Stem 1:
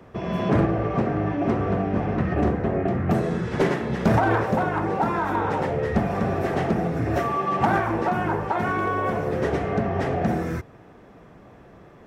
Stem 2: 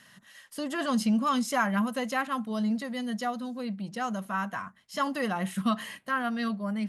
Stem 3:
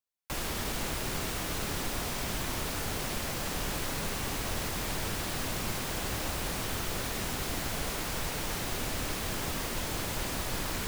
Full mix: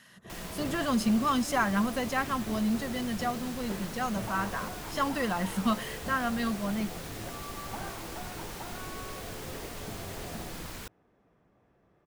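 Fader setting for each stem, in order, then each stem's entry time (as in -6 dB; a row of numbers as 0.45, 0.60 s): -19.5, -0.5, -8.0 dB; 0.10, 0.00, 0.00 s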